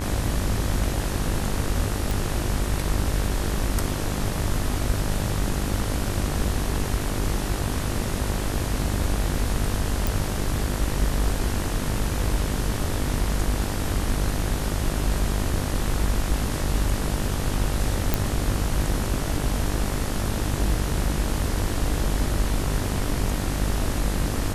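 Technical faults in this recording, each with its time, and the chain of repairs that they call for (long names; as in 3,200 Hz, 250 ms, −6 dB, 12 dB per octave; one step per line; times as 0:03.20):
mains buzz 50 Hz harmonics 39 −29 dBFS
0:02.11: click
0:10.07: click
0:18.14: click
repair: click removal
hum removal 50 Hz, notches 39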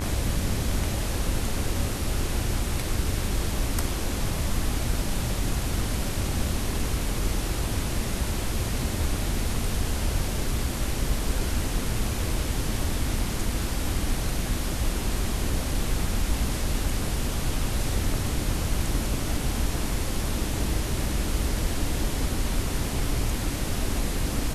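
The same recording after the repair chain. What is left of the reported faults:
none of them is left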